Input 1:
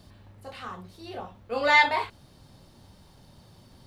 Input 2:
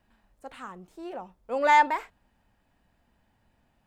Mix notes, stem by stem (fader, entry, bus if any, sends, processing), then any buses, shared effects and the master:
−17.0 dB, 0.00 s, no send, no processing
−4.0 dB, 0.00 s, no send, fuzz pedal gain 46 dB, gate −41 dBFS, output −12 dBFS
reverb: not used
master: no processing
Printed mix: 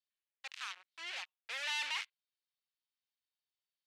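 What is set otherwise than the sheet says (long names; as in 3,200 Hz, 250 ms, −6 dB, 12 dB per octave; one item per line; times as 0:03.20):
stem 1 −17.0 dB → −23.0 dB
master: extra four-pole ladder band-pass 3,100 Hz, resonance 30%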